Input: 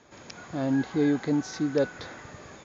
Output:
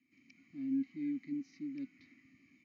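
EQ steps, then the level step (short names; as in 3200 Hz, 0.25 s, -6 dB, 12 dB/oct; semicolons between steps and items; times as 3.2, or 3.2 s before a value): vowel filter i; bell 600 Hz -9 dB 0.34 oct; fixed phaser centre 2300 Hz, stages 8; -3.0 dB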